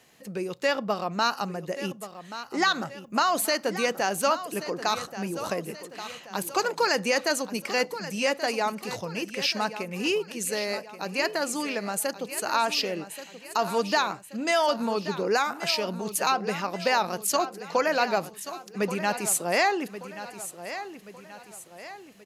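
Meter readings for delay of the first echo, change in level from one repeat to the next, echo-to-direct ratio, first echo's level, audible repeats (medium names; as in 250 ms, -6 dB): 1130 ms, -7.0 dB, -11.5 dB, -12.5 dB, 4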